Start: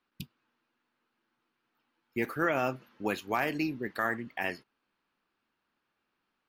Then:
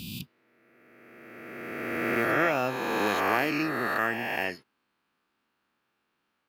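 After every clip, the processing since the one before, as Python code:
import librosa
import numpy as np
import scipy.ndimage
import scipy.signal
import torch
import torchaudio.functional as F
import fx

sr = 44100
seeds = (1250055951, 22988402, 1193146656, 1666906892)

y = fx.spec_swells(x, sr, rise_s=2.44)
y = scipy.signal.sosfilt(scipy.signal.butter(2, 54.0, 'highpass', fs=sr, output='sos'), y)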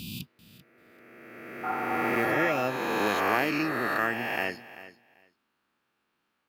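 y = fx.spec_repair(x, sr, seeds[0], start_s=1.67, length_s=0.94, low_hz=660.0, high_hz=1600.0, source='after')
y = fx.echo_feedback(y, sr, ms=390, feedback_pct=17, wet_db=-16.0)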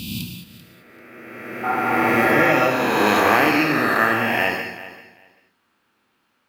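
y = fx.rev_gated(x, sr, seeds[1], gate_ms=240, shape='flat', drr_db=2.0)
y = y * librosa.db_to_amplitude(8.0)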